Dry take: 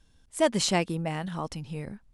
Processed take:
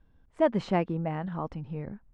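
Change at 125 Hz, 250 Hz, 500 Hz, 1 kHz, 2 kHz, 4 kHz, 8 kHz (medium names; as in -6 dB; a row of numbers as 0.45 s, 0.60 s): 0.0 dB, 0.0 dB, 0.0 dB, -0.5 dB, -6.0 dB, -16.0 dB, under -25 dB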